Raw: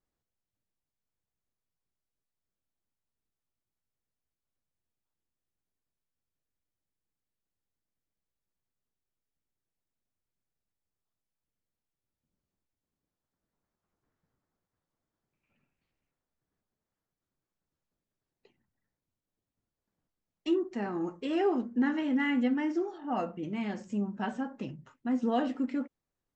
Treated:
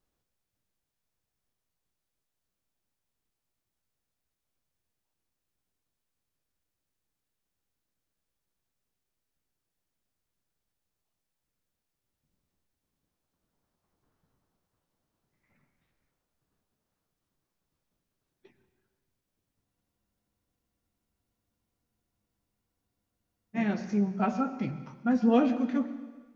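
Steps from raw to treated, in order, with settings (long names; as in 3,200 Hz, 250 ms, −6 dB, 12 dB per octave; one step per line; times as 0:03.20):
formants moved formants −3 semitones
dense smooth reverb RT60 1.3 s, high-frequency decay 0.95×, pre-delay 90 ms, DRR 12 dB
frozen spectrum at 0:19.67, 3.88 s
level +6 dB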